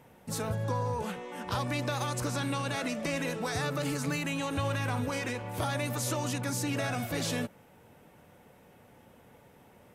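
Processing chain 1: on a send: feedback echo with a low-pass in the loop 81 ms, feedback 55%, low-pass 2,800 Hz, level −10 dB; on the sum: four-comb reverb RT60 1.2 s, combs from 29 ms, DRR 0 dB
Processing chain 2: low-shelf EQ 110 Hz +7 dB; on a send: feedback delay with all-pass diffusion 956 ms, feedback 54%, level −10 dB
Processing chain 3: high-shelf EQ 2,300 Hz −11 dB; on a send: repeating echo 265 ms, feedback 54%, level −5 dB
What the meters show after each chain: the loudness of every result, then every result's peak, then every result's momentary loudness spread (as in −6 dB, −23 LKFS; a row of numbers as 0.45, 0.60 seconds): −28.5, −31.5, −33.0 LKFS; −15.0, −16.5, −19.5 dBFS; 6, 15, 7 LU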